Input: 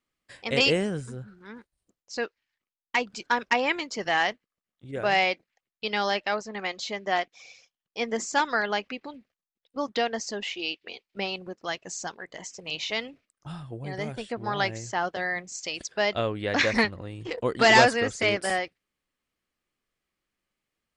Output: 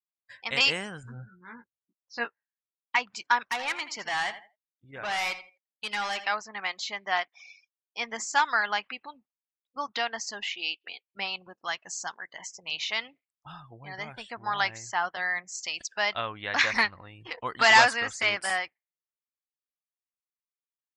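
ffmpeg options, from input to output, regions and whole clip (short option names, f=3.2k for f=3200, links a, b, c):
-filter_complex "[0:a]asettb=1/sr,asplit=3[a][b][c];[a]atrim=end=1.034[d];[b]atrim=start=1.03:end=2.96,asetpts=PTS-STARTPTS,afade=t=in:d=0.004:c=qsin,afade=t=out:st=1.926:d=0.004:c=qsin,highpass=130,lowpass=5.9k,aemphasis=mode=reproduction:type=bsi,asplit=2[e][f];[f]adelay=17,volume=-4dB[g];[e][g]amix=inputs=2:normalize=0,atrim=end_sample=85113[h];[c]atrim=start=2.956[i];[d][h]acrossfade=d=0.004:c1=hsin:c2=qsin[j];[j][i]acrossfade=d=0.004:c1=qsin:c2=hsin,asettb=1/sr,asplit=3[k][l][m];[k]atrim=end=3.514[n];[l]atrim=start=3.51:end=6.27,asetpts=PTS-STARTPTS,afade=t=in:d=0.004:c=qsin,afade=t=out:st=2.756:d=0.004:c=qsin,asoftclip=type=hard:threshold=-26dB,aecho=1:1:82|164|246:0.237|0.0735|0.0228,atrim=end_sample=121716[o];[m]atrim=start=6.266[p];[n][o]acrossfade=d=0.004:c1=hsin:c2=qsin[q];[q][p]acrossfade=d=0.004:c1=qsin:c2=hsin,afftdn=nr=25:nf=-51,lowshelf=f=670:t=q:w=1.5:g=-11"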